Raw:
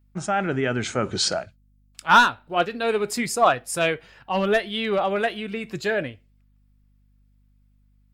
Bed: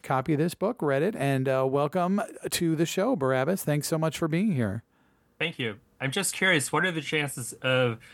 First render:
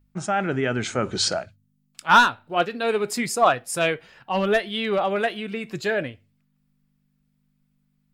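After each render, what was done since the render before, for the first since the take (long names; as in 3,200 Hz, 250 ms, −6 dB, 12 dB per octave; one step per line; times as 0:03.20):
hum removal 50 Hz, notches 2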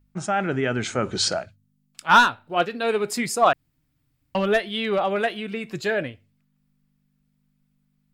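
0:03.53–0:04.35: fill with room tone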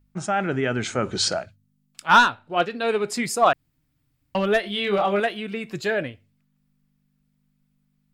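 0:02.16–0:03.23: low-pass filter 9,400 Hz
0:04.61–0:05.20: double-tracking delay 25 ms −4 dB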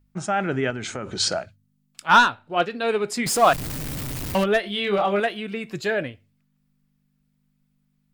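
0:00.70–0:01.20: downward compressor 10 to 1, threshold −26 dBFS
0:03.26–0:04.44: converter with a step at zero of −24 dBFS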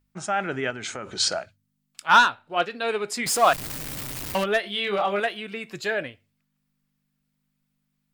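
low-shelf EQ 400 Hz −9 dB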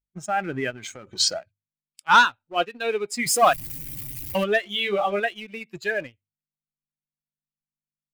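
spectral dynamics exaggerated over time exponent 1.5
leveller curve on the samples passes 1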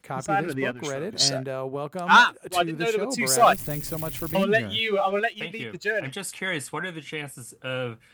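mix in bed −6 dB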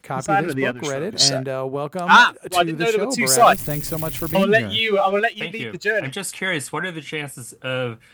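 level +5.5 dB
brickwall limiter −3 dBFS, peak gain reduction 3 dB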